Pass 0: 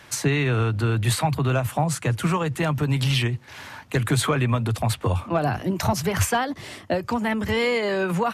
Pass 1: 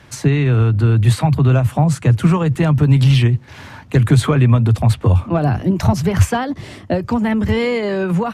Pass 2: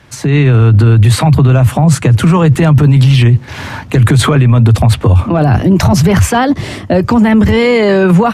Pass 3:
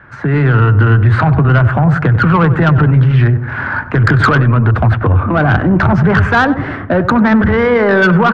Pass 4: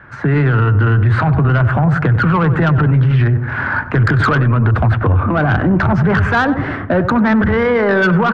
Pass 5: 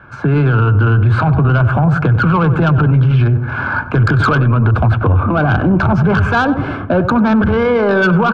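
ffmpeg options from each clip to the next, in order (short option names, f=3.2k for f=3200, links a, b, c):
-af "lowshelf=f=350:g=11.5,dynaudnorm=f=250:g=9:m=11.5dB,highshelf=f=12k:g=-10,volume=-1dB"
-af "alimiter=limit=-13.5dB:level=0:latency=1:release=13,dynaudnorm=f=170:g=3:m=12dB,volume=1.5dB"
-filter_complex "[0:a]lowpass=f=1.5k:t=q:w=5.1,asoftclip=type=tanh:threshold=-2.5dB,asplit=2[a][b];[b]adelay=95,lowpass=f=970:p=1,volume=-10dB,asplit=2[c][d];[d]adelay=95,lowpass=f=970:p=1,volume=0.54,asplit=2[e][f];[f]adelay=95,lowpass=f=970:p=1,volume=0.54,asplit=2[g][h];[h]adelay=95,lowpass=f=970:p=1,volume=0.54,asplit=2[i][j];[j]adelay=95,lowpass=f=970:p=1,volume=0.54,asplit=2[k][l];[l]adelay=95,lowpass=f=970:p=1,volume=0.54[m];[c][e][g][i][k][m]amix=inputs=6:normalize=0[n];[a][n]amix=inputs=2:normalize=0,volume=-1.5dB"
-af "alimiter=limit=-7dB:level=0:latency=1:release=48"
-af "asuperstop=centerf=1900:order=4:qfactor=3.8,volume=1dB"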